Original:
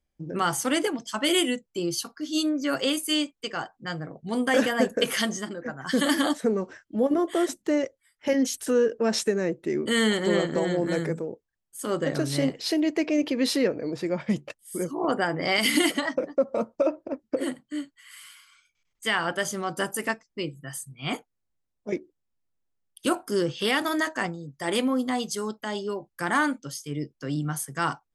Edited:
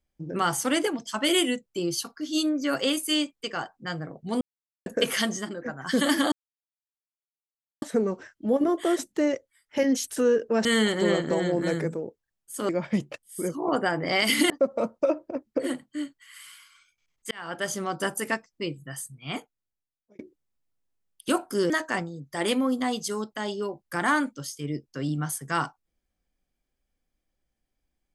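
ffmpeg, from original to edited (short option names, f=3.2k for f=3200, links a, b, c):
-filter_complex "[0:a]asplit=10[a][b][c][d][e][f][g][h][i][j];[a]atrim=end=4.41,asetpts=PTS-STARTPTS,afade=t=out:st=4.406:d=0.004:c=hsin[k];[b]atrim=start=4.41:end=4.86,asetpts=PTS-STARTPTS,volume=0[l];[c]atrim=start=4.86:end=6.32,asetpts=PTS-STARTPTS,afade=t=in:d=0.004:c=hsin,afade=t=out:st=1.456:d=0.004:c=hsin,apad=pad_dur=1.5[m];[d]atrim=start=6.32:end=9.152,asetpts=PTS-STARTPTS,afade=t=in:d=0.004:c=hsin[n];[e]atrim=start=9.898:end=11.942[o];[f]atrim=start=14.048:end=15.862[p];[g]atrim=start=16.268:end=19.08,asetpts=PTS-STARTPTS,afade=t=out:st=2.808:d=0.004:c=hsin[q];[h]atrim=start=19.08:end=21.96,asetpts=PTS-STARTPTS,afade=t=in:d=0.42,afade=t=out:st=1.63:d=1.25[r];[i]atrim=start=21.96:end=23.472,asetpts=PTS-STARTPTS,afade=t=in:d=0.004:c=hsin[s];[j]atrim=start=23.968[t];[k][l][m][n]concat=n=4:v=0:a=1[u];[u][o]acrossfade=d=0.004:c1=hsin:c2=hsin[v];[v][p]acrossfade=d=0.004:c1=hsin:c2=hsin[w];[q][r][s]concat=n=3:v=0:a=1[x];[w][x]acrossfade=d=0.004:c1=hsin:c2=hsin[y];[y][t]acrossfade=d=0.004:c1=hsin:c2=hsin"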